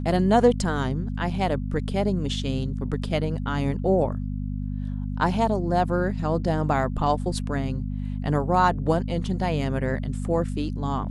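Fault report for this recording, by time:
hum 50 Hz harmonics 5 -29 dBFS

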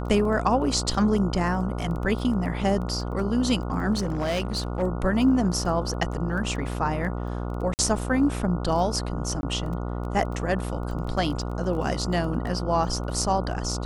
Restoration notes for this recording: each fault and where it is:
buzz 60 Hz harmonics 24 -30 dBFS
crackle 11 per s
3.93–4.83 s: clipped -22 dBFS
7.74–7.79 s: dropout 49 ms
9.41–9.43 s: dropout 21 ms

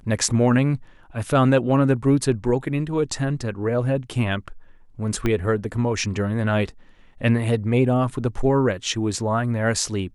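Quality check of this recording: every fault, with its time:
5.26 s: pop -11 dBFS

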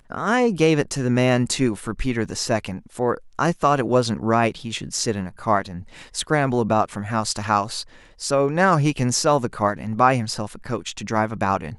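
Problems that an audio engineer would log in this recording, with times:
2.25 s: dropout 2.3 ms

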